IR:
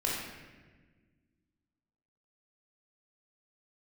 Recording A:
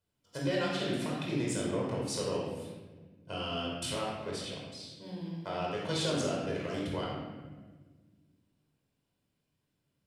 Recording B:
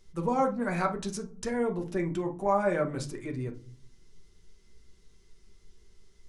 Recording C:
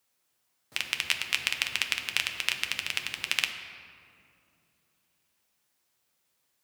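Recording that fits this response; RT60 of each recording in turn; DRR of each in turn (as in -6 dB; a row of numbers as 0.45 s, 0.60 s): A; 1.4 s, no single decay rate, 2.7 s; -4.5 dB, 2.0 dB, 4.5 dB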